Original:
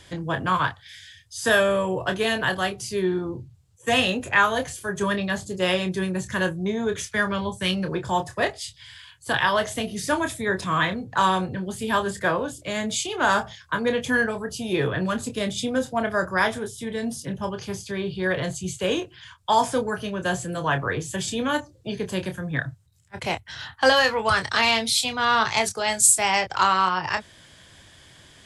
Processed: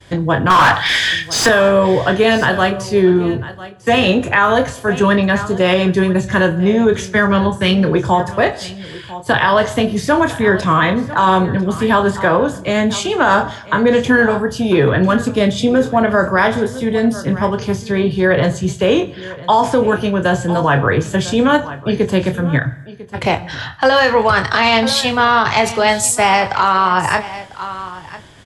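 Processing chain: dynamic EQ 9600 Hz, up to -7 dB, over -48 dBFS, Q 1.2; 0.5–1.49 overdrive pedal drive 31 dB, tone 3700 Hz, clips at -10 dBFS; expander -46 dBFS; high shelf 2200 Hz -8.5 dB; on a send: echo 0.998 s -18 dB; on the sum: plate-style reverb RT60 0.82 s, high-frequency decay 0.85×, DRR 14.5 dB; maximiser +16 dB; gain -2.5 dB

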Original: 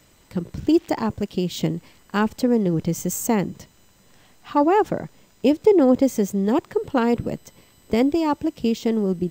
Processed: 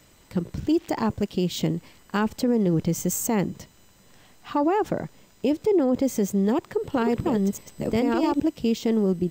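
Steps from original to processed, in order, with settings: 6.27–8.4 reverse delay 0.654 s, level -1 dB; limiter -14.5 dBFS, peak gain reduction 9 dB

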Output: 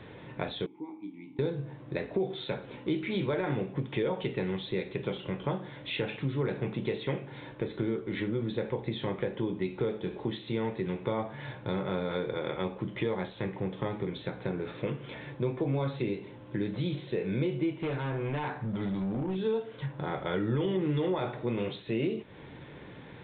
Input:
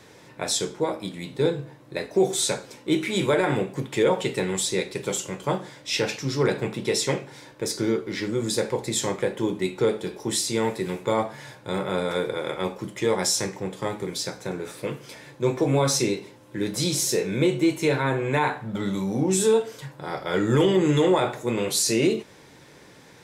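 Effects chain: low shelf 260 Hz +8 dB; compressor 3:1, threshold -31 dBFS, peak gain reduction 14.5 dB; 0.66–1.39 vowel filter u; 17.82–19.36 hard clip -28.5 dBFS, distortion -21 dB; downsampling 8000 Hz

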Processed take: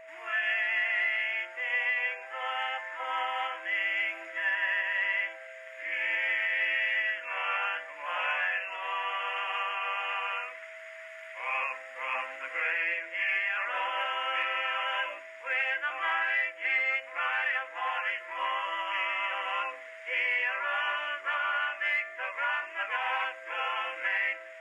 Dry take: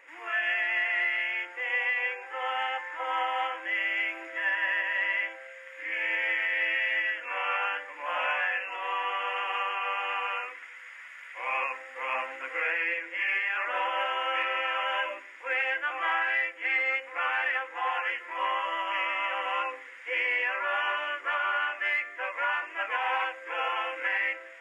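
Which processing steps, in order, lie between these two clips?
bell 390 Hz -7.5 dB 2.1 oct; whine 650 Hz -47 dBFS

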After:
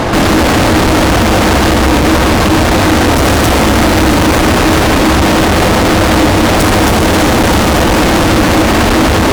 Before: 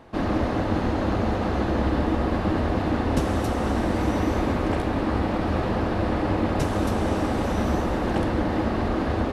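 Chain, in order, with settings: fuzz box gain 49 dB, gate -58 dBFS; on a send: reverb RT60 0.65 s, pre-delay 3 ms, DRR 17 dB; on the sum: gain +5 dB

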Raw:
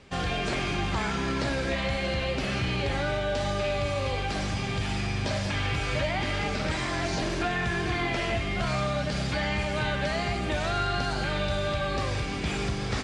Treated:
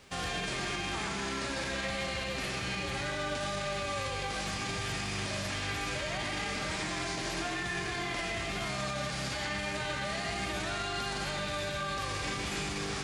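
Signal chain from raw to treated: spectral whitening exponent 0.6; on a send at -1 dB: reverb RT60 0.65 s, pre-delay 0.116 s; on the sum: limiter -22.5 dBFS, peak gain reduction 9 dB; gain -3.5 dB

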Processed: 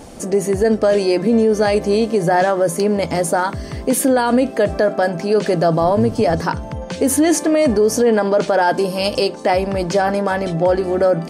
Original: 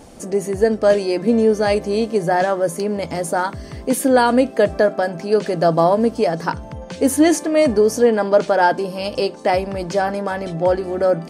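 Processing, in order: 5.78–6.42 octaver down 1 oct, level -5 dB; limiter -12 dBFS, peak gain reduction 8.5 dB; 8.61–9.27 high shelf 7600 Hz -> 4000 Hz +6.5 dB; gain +5 dB

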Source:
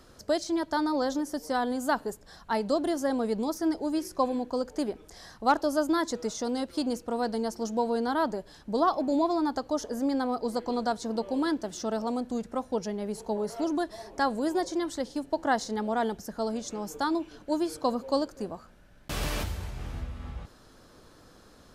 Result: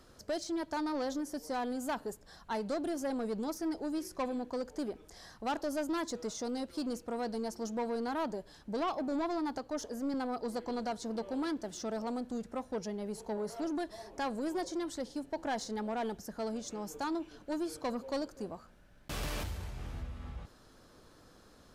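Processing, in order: soft clip -24.5 dBFS, distortion -12 dB; 9.58–10.14 three-band expander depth 40%; gain -4.5 dB

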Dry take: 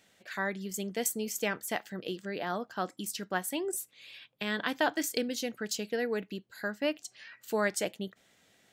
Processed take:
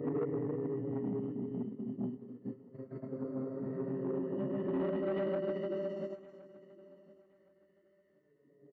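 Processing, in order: running mean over 35 samples; tilt -4 dB/oct; doubler 22 ms -5 dB; compressor 2.5:1, threshold -31 dBFS, peak gain reduction 7.5 dB; Paulstretch 6.8×, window 0.50 s, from 6.12; gate -39 dBFS, range -15 dB; dynamic EQ 330 Hz, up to +4 dB, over -41 dBFS, Q 0.74; formant-preserving pitch shift -7.5 st; soft clip -27 dBFS, distortion -15 dB; HPF 170 Hz 6 dB/oct; on a send: feedback echo 1.067 s, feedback 24%, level -20.5 dB

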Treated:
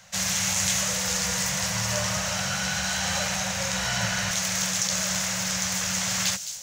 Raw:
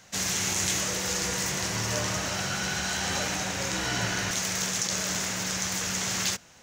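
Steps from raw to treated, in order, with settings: Chebyshev band-stop 200–520 Hz, order 3; on a send: thin delay 0.211 s, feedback 59%, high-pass 4800 Hz, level -7 dB; on the sum: gain +2.5 dB

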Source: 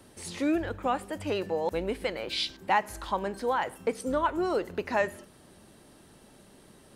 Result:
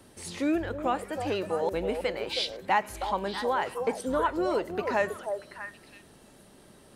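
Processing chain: delay with a stepping band-pass 0.32 s, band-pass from 550 Hz, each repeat 1.4 oct, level -4 dB

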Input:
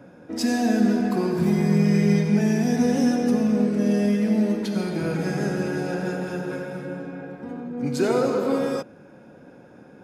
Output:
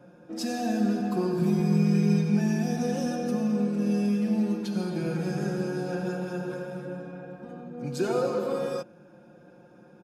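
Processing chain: notch 2000 Hz, Q 5.9; comb 5.7 ms, depth 68%; gain -7 dB

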